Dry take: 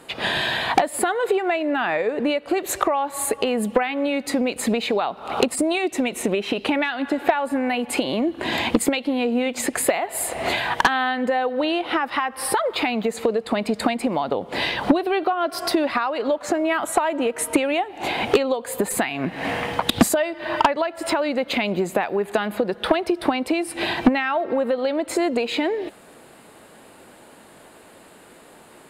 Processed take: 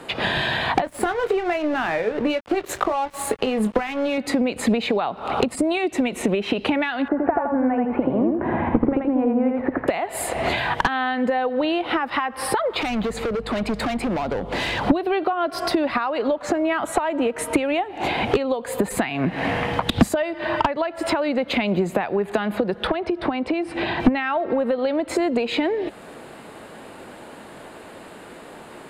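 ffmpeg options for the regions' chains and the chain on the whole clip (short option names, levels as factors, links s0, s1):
-filter_complex "[0:a]asettb=1/sr,asplit=3[s0][s1][s2];[s0]atrim=end=0.844[s3];[s1]atrim=start=0.84:end=4.18,asetpts=PTS-STARTPTS,afade=t=in:d=0.004:c=qsin,afade=t=out:st=3.336:d=0.004:c=qsin,asplit=2[s4][s5];[s5]adelay=23,volume=0.316[s6];[s4][s6]amix=inputs=2:normalize=0,atrim=end_sample=147294,aeval=exprs='sgn(val(0))*max(abs(val(0))-0.02,0)':c=same[s7];[s2]atrim=start=4.176[s8];[s3][s7]acrossfade=d=0.004:c1=hsin:c2=qsin[s9];[s9][s8]acrossfade=d=0.004:c1=qsin:c2=hsin,asettb=1/sr,asplit=3[s10][s11][s12];[s10]atrim=end=7.084[s13];[s11]atrim=start=7.08:end=9.88,asetpts=PTS-STARTPTS,afade=t=in:d=0.004:c=qsin,afade=t=out:st=2.796:d=0.004:c=qsin,lowpass=f=1500:w=0.5412,lowpass=f=1500:w=1.3066,aecho=1:1:82|164|246|328:0.708|0.212|0.0637|0.0191,atrim=end_sample=123480[s14];[s12]atrim=start=9.876[s15];[s13][s14]acrossfade=d=0.004:c1=hsin:c2=qsin[s16];[s16][s15]acrossfade=d=0.004:c1=qsin:c2=hsin,asettb=1/sr,asplit=3[s17][s18][s19];[s17]atrim=end=12.814[s20];[s18]atrim=start=12.81:end=14.86,asetpts=PTS-STARTPTS,afade=t=in:d=0.004:c=qsin,afade=t=out:st=2.046:d=0.004:c=qsin,aeval=exprs='val(0)+0.00631*(sin(2*PI*50*n/s)+sin(2*PI*2*50*n/s)/2+sin(2*PI*3*50*n/s)/3+sin(2*PI*4*50*n/s)/4+sin(2*PI*5*50*n/s)/5)':c=same,asoftclip=type=hard:threshold=0.0596[s21];[s19]atrim=start=14.856[s22];[s20][s21]acrossfade=d=0.004:c1=hsin:c2=qsin[s23];[s23][s22]acrossfade=d=0.004:c1=qsin:c2=hsin,asettb=1/sr,asplit=3[s24][s25][s26];[s24]atrim=end=22.874[s27];[s25]atrim=start=22.87:end=24,asetpts=PTS-STARTPTS,afade=t=in:d=0.004:c=qsin,afade=t=out:st=1.126:d=0.004:c=qsin,lowpass=10000,aemphasis=mode=reproduction:type=50fm,acompressor=threshold=0.0501:ratio=1.5:attack=3.2:release=140:knee=1:detection=peak[s28];[s26]atrim=start=23.996[s29];[s27][s28]acrossfade=d=0.004:c1=hsin:c2=qsin[s30];[s30][s29]acrossfade=d=0.004:c1=qsin:c2=hsin,highshelf=f=5900:g=-11,acrossover=split=170[s31][s32];[s32]acompressor=threshold=0.0224:ratio=2[s33];[s31][s33]amix=inputs=2:normalize=0,volume=2.37"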